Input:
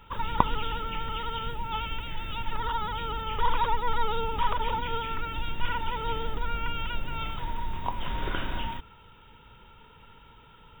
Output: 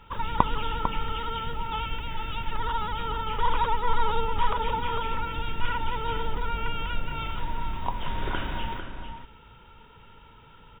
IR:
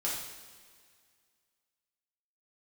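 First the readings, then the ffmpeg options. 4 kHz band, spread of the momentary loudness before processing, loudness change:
0.0 dB, 7 LU, +1.5 dB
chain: -filter_complex "[0:a]highshelf=frequency=7100:gain=-8,asplit=2[link_01][link_02];[link_02]adelay=449,volume=-7dB,highshelf=frequency=4000:gain=-10.1[link_03];[link_01][link_03]amix=inputs=2:normalize=0,volume=1dB"

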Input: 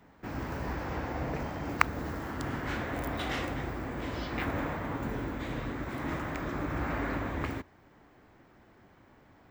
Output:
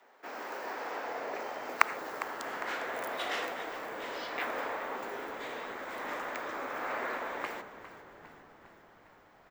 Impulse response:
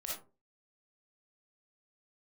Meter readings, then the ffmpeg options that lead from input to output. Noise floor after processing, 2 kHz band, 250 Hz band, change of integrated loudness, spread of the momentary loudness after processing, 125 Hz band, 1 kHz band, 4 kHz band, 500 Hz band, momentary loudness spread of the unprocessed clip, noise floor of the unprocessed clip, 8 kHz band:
−60 dBFS, +1.0 dB, −12.5 dB, −1.5 dB, 13 LU, −26.5 dB, +1.0 dB, +1.0 dB, −0.5 dB, 5 LU, −60 dBFS, +1.0 dB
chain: -filter_complex "[0:a]highpass=frequency=450:width=0.5412,highpass=frequency=450:width=1.3066,afreqshift=-32,asplit=8[link_01][link_02][link_03][link_04][link_05][link_06][link_07][link_08];[link_02]adelay=404,afreqshift=-70,volume=-14dB[link_09];[link_03]adelay=808,afreqshift=-140,volume=-18.2dB[link_10];[link_04]adelay=1212,afreqshift=-210,volume=-22.3dB[link_11];[link_05]adelay=1616,afreqshift=-280,volume=-26.5dB[link_12];[link_06]adelay=2020,afreqshift=-350,volume=-30.6dB[link_13];[link_07]adelay=2424,afreqshift=-420,volume=-34.8dB[link_14];[link_08]adelay=2828,afreqshift=-490,volume=-38.9dB[link_15];[link_01][link_09][link_10][link_11][link_12][link_13][link_14][link_15]amix=inputs=8:normalize=0,asplit=2[link_16][link_17];[1:a]atrim=start_sample=2205,asetrate=29547,aresample=44100[link_18];[link_17][link_18]afir=irnorm=-1:irlink=0,volume=-16.5dB[link_19];[link_16][link_19]amix=inputs=2:normalize=0"

